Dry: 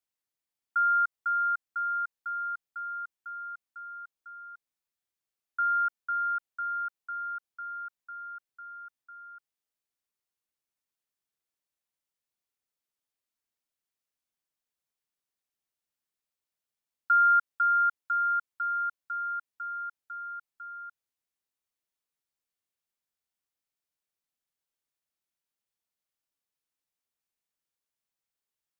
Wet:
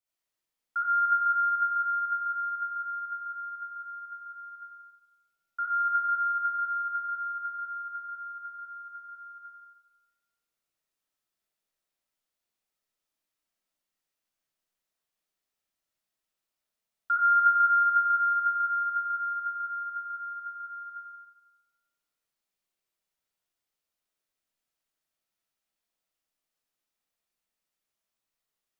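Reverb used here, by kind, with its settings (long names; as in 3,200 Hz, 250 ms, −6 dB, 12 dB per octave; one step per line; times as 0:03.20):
comb and all-pass reverb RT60 1.2 s, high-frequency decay 0.7×, pre-delay 15 ms, DRR −7.5 dB
level −3.5 dB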